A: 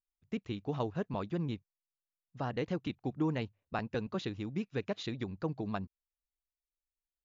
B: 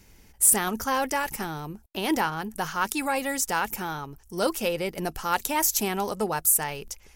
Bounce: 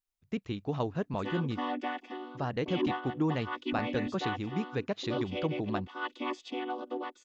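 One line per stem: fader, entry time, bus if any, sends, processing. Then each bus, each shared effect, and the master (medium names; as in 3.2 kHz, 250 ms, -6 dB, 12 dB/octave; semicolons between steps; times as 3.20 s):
+2.5 dB, 0.00 s, no send, none
-8.0 dB, 0.70 s, no send, vocoder on a held chord minor triad, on B3; saturation -12.5 dBFS, distortion -23 dB; touch-sensitive low-pass 240–3200 Hz up, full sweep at -34 dBFS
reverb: none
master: none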